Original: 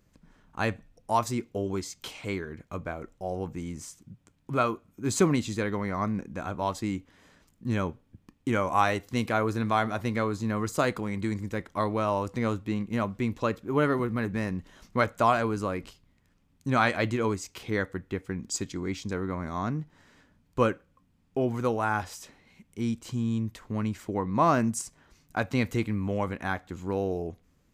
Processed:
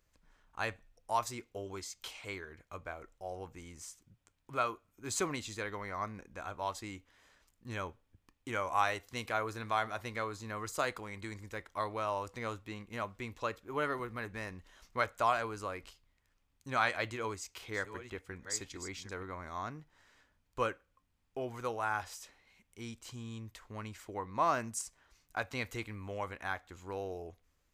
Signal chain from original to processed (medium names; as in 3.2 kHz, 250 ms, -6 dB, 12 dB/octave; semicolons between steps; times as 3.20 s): 17.06–19.23 s: chunks repeated in reverse 544 ms, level -10 dB; peaking EQ 190 Hz -14.5 dB 2.1 oct; trim -4.5 dB